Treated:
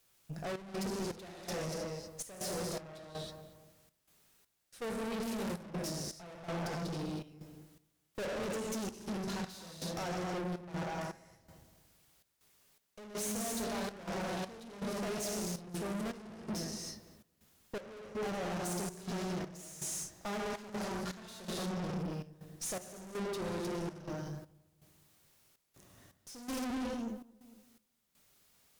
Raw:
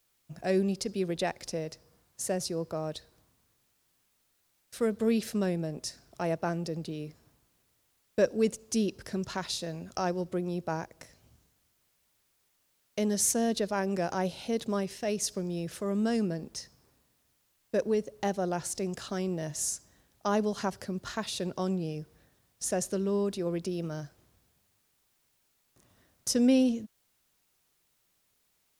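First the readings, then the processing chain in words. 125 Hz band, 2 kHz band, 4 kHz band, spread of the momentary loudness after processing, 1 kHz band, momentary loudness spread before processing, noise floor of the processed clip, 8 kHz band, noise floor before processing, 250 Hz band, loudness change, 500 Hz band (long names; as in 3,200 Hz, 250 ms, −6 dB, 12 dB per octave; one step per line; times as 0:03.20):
−5.0 dB, −3.5 dB, −5.0 dB, 10 LU, −5.0 dB, 12 LU, −78 dBFS, −7.0 dB, −73 dBFS, −8.5 dB, −8.0 dB, −9.0 dB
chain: reverb whose tail is shaped and stops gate 350 ms flat, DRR 0 dB
tube saturation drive 40 dB, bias 0.45
feedback echo with a low-pass in the loop 228 ms, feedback 35%, low-pass 1,200 Hz, level −10 dB
gate pattern "xxx.xx..x" 81 BPM −12 dB
level +3.5 dB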